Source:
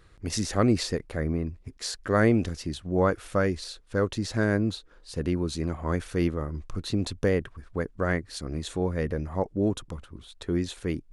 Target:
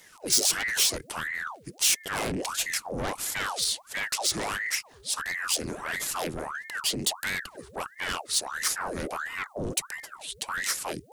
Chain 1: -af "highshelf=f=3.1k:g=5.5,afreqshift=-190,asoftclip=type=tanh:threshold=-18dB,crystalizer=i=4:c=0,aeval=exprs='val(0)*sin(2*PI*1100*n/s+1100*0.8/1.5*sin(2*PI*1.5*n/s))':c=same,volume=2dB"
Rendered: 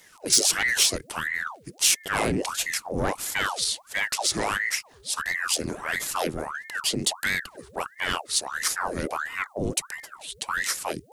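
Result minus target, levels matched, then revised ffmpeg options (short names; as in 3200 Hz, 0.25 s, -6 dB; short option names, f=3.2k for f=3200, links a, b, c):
soft clip: distortion -7 dB
-af "highshelf=f=3.1k:g=5.5,afreqshift=-190,asoftclip=type=tanh:threshold=-27dB,crystalizer=i=4:c=0,aeval=exprs='val(0)*sin(2*PI*1100*n/s+1100*0.8/1.5*sin(2*PI*1.5*n/s))':c=same,volume=2dB"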